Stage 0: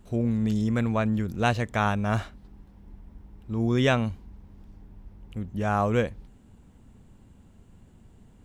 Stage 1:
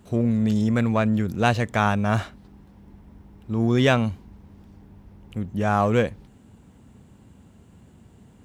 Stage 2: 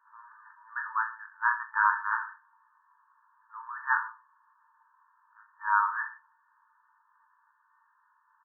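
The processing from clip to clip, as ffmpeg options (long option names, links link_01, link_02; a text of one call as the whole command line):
ffmpeg -i in.wav -filter_complex "[0:a]asplit=2[link_01][link_02];[link_02]asoftclip=type=hard:threshold=-25dB,volume=-10dB[link_03];[link_01][link_03]amix=inputs=2:normalize=0,highpass=77,volume=2.5dB" out.wav
ffmpeg -i in.wav -af "afftfilt=real='re*between(b*sr/4096,760,1700)':imag='im*between(b*sr/4096,760,1700)':win_size=4096:overlap=0.75,afreqshift=120,aecho=1:1:20|44|72.8|107.4|148.8:0.631|0.398|0.251|0.158|0.1,volume=-1.5dB" out.wav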